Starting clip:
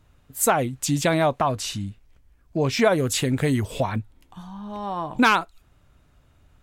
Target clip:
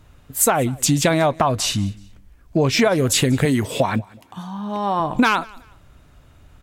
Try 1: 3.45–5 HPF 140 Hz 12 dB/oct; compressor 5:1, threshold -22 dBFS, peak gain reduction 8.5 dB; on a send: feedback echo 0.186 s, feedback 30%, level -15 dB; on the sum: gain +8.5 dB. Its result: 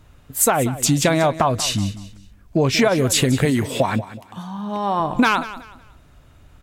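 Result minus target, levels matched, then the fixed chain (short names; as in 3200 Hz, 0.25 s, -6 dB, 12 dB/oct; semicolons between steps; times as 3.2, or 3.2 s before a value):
echo-to-direct +9 dB
3.45–5 HPF 140 Hz 12 dB/oct; compressor 5:1, threshold -22 dBFS, peak gain reduction 8.5 dB; on a send: feedback echo 0.186 s, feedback 30%, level -24 dB; on the sum: gain +8.5 dB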